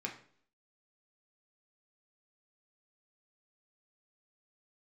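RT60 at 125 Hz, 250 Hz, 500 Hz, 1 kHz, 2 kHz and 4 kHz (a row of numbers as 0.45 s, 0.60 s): 0.55 s, 0.65 s, 0.60 s, 0.50 s, 0.50 s, 0.50 s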